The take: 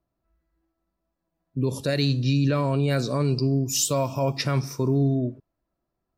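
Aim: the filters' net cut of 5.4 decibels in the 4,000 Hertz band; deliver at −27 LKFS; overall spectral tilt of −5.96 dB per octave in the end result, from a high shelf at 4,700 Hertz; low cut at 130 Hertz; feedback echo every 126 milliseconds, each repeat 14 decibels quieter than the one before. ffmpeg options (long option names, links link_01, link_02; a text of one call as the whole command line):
ffmpeg -i in.wav -af "highpass=130,equalizer=frequency=4000:width_type=o:gain=-4.5,highshelf=frequency=4700:gain=-4,aecho=1:1:126|252:0.2|0.0399,volume=-1.5dB" out.wav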